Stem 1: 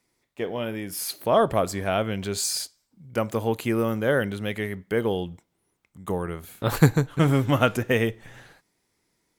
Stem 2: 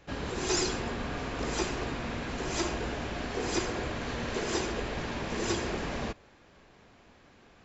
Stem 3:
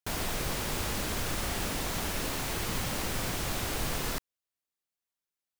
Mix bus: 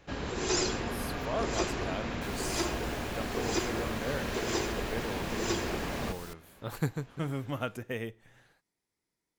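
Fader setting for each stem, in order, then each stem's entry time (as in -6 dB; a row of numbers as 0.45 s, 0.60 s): -14.0 dB, -0.5 dB, -13.0 dB; 0.00 s, 0.00 s, 2.15 s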